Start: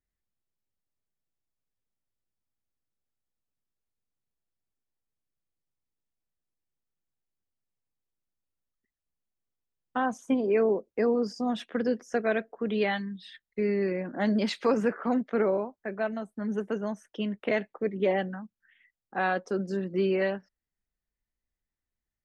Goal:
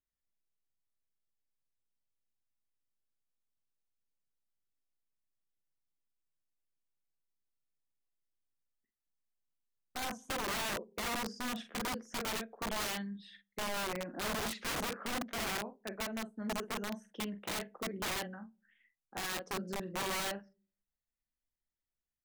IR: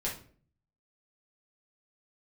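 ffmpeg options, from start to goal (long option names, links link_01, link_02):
-filter_complex "[0:a]aecho=1:1:18|45:0.133|0.335,asplit=2[link_01][link_02];[1:a]atrim=start_sample=2205,asetrate=66150,aresample=44100,lowshelf=frequency=460:gain=4[link_03];[link_02][link_03]afir=irnorm=-1:irlink=0,volume=-18.5dB[link_04];[link_01][link_04]amix=inputs=2:normalize=0,aeval=exprs='(mod(14.1*val(0)+1,2)-1)/14.1':channel_layout=same,volume=-8.5dB"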